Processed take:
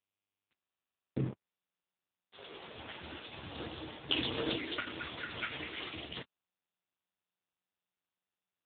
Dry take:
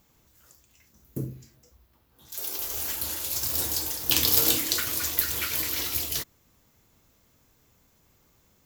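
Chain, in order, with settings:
centre clipping without the shift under −37 dBFS
AMR narrowband 5.9 kbit/s 8,000 Hz

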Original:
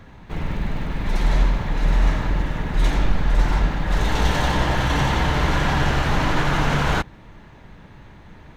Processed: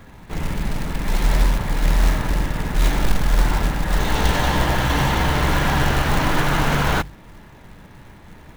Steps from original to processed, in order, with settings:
mains-hum notches 50/100/150 Hz
floating-point word with a short mantissa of 2 bits
level +1.5 dB

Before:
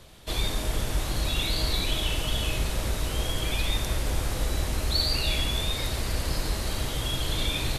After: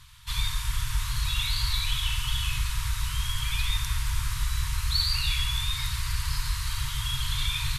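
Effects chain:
brick-wall band-stop 140–900 Hz

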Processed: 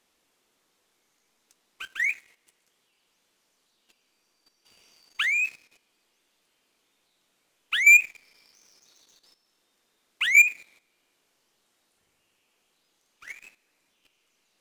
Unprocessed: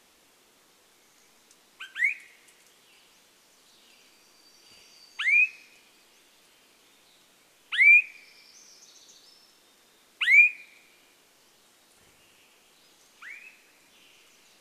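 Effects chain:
leveller curve on the samples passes 2
output level in coarse steps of 12 dB

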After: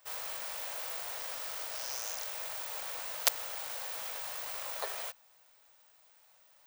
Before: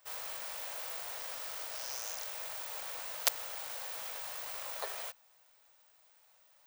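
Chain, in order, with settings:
surface crackle 190 per second −65 dBFS
level +2 dB

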